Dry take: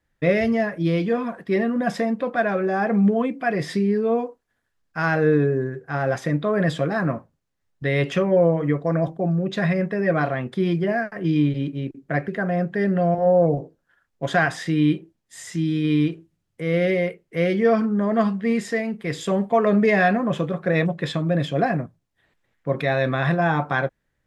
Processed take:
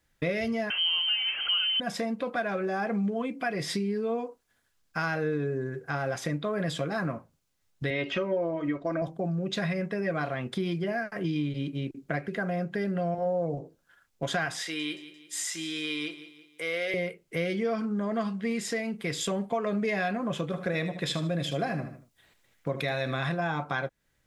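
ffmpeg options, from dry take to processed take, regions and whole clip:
ffmpeg -i in.wav -filter_complex "[0:a]asettb=1/sr,asplit=3[link_01][link_02][link_03];[link_01]atrim=end=0.704[link_04];[link_02]atrim=start=0.7:end=1.8,asetpts=PTS-STARTPTS,afade=type=in:duration=0.004:curve=qsin,afade=type=out:start_time=1.096:duration=0.004:curve=qsin,aeval=exprs='val(0)+0.5*0.0501*sgn(val(0))':channel_layout=same,lowpass=frequency=2800:width_type=q:width=0.5098,lowpass=frequency=2800:width_type=q:width=0.6013,lowpass=frequency=2800:width_type=q:width=0.9,lowpass=frequency=2800:width_type=q:width=2.563,afreqshift=-3300[link_05];[link_03]atrim=start=1.796[link_06];[link_04][link_05]acrossfade=duration=0.004:curve1=hsin:curve2=qsin[link_07];[link_07][link_06]acrossfade=duration=0.004:curve1=qsin:curve2=hsin,asettb=1/sr,asplit=3[link_08][link_09][link_10];[link_08]atrim=end=7.904[link_11];[link_09]atrim=start=7.9:end=9.02,asetpts=PTS-STARTPTS,afade=type=in:duration=0.004:curve=qsin,afade=type=out:start_time=1.116:duration=0.004:curve=qsin,acrossover=split=3900[link_12][link_13];[link_13]acompressor=threshold=-53dB:ratio=4:attack=1:release=60[link_14];[link_12][link_14]amix=inputs=2:normalize=0,lowpass=5500,aecho=1:1:3.2:0.62,atrim=end_sample=49392[link_15];[link_10]atrim=start=9.016[link_16];[link_11][link_15]acrossfade=duration=0.004:curve1=hsin:curve2=qsin[link_17];[link_17][link_16]acrossfade=duration=0.004:curve1=qsin:curve2=hsin,asettb=1/sr,asplit=3[link_18][link_19][link_20];[link_18]atrim=end=14.624[link_21];[link_19]atrim=start=14.62:end=16.94,asetpts=PTS-STARTPTS,afade=type=in:duration=0.004:curve=qsin,afade=type=out:start_time=2.316:duration=0.004:curve=qsin,highpass=620,aecho=1:1:173|346|519:0.133|0.056|0.0235,atrim=end_sample=102312[link_22];[link_20]atrim=start=16.936[link_23];[link_21][link_22]acrossfade=duration=0.004:curve1=hsin:curve2=qsin[link_24];[link_24][link_23]acrossfade=duration=0.004:curve1=qsin:curve2=hsin,asettb=1/sr,asplit=3[link_25][link_26][link_27];[link_25]atrim=end=20.504[link_28];[link_26]atrim=start=20.5:end=23.29,asetpts=PTS-STARTPTS,afade=type=in:duration=0.004:curve=qsin,afade=type=out:start_time=2.786:duration=0.004:curve=qsin,highshelf=frequency=5300:gain=5,aecho=1:1:76|152|228:0.251|0.0779|0.0241,atrim=end_sample=123039[link_29];[link_27]atrim=start=23.286[link_30];[link_28][link_29]acrossfade=duration=0.004:curve1=hsin:curve2=qsin[link_31];[link_31][link_30]acrossfade=duration=0.004:curve1=qsin:curve2=hsin,highshelf=frequency=2300:gain=9.5,bandreject=frequency=1800:width=12,acompressor=threshold=-30dB:ratio=3" out.wav

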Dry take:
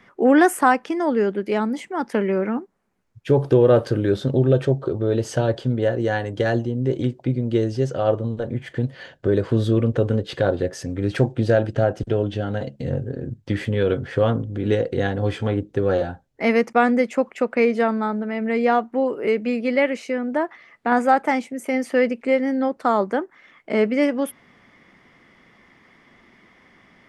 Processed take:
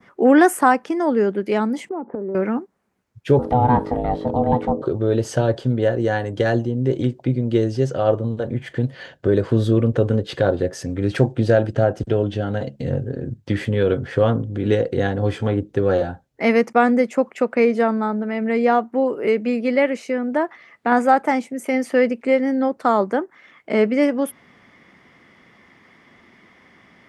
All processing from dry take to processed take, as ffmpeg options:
ffmpeg -i in.wav -filter_complex "[0:a]asettb=1/sr,asplit=3[link_01][link_02][link_03];[link_01]atrim=end=1.894[link_04];[link_02]atrim=start=1.89:end=2.35,asetpts=PTS-STARTPTS,afade=type=in:duration=0.004:curve=qsin,afade=type=out:start_time=0.456:duration=0.004:curve=qsin,lowpass=frequency=1100:width=0.5412,lowpass=frequency=1100:width=1.3066,equalizer=frequency=400:width_type=o:width=2.3:gain=10,acompressor=threshold=-25dB:ratio=20:attack=3.2:release=140:knee=1:detection=peak[link_05];[link_03]atrim=start=2.346[link_06];[link_04][link_05]acrossfade=duration=0.004:curve1=hsin:curve2=qsin[link_07];[link_07][link_06]acrossfade=duration=0.004:curve1=qsin:curve2=hsin,asettb=1/sr,asplit=3[link_08][link_09][link_10];[link_08]atrim=end=3.394[link_11];[link_09]atrim=start=3.39:end=4.82,asetpts=PTS-STARTPTS,afade=type=in:duration=0.004:curve=qsin,afade=type=out:start_time=1.426:duration=0.004:curve=qsin,acrossover=split=3100[link_12][link_13];[link_13]acompressor=threshold=-55dB:ratio=4:attack=1:release=60[link_14];[link_12][link_14]amix=inputs=2:normalize=0,aeval=exprs='val(0)+0.0398*(sin(2*PI*50*n/s)+sin(2*PI*2*50*n/s)/2+sin(2*PI*3*50*n/s)/3+sin(2*PI*4*50*n/s)/4+sin(2*PI*5*50*n/s)/5)':channel_layout=same,aeval=exprs='val(0)*sin(2*PI*370*n/s)':channel_layout=same[link_15];[link_10]atrim=start=4.816[link_16];[link_11][link_15]acrossfade=duration=0.004:curve1=hsin:curve2=qsin[link_17];[link_17][link_16]acrossfade=duration=0.004:curve1=qsin:curve2=hsin,highpass=50,adynamicequalizer=threshold=0.0126:dfrequency=2900:dqfactor=0.78:tfrequency=2900:tqfactor=0.78:attack=5:release=100:ratio=0.375:range=3:mode=cutabove:tftype=bell,volume=2dB" out.wav

